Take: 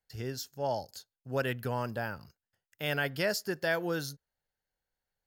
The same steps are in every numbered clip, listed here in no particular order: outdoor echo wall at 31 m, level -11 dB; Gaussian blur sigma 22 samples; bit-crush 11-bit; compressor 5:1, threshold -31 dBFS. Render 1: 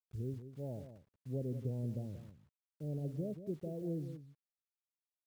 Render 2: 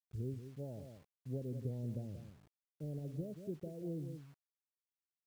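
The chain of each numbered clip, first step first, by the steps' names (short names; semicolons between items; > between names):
Gaussian blur > compressor > bit-crush > outdoor echo; outdoor echo > compressor > Gaussian blur > bit-crush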